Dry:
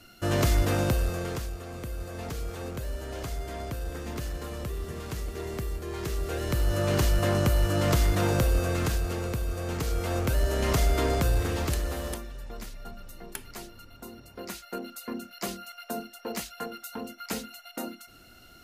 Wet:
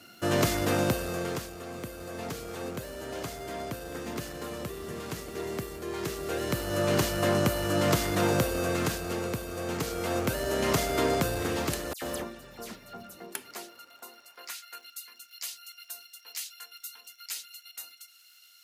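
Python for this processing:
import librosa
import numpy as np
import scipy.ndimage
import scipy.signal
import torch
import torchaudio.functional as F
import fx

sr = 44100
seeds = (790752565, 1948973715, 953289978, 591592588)

y = fx.dispersion(x, sr, late='lows', ms=90.0, hz=3000.0, at=(11.93, 13.15))
y = fx.dmg_crackle(y, sr, seeds[0], per_s=86.0, level_db=-48.0)
y = fx.filter_sweep_highpass(y, sr, from_hz=150.0, to_hz=3000.0, start_s=12.97, end_s=15.05, q=0.75)
y = y * 10.0 ** (1.5 / 20.0)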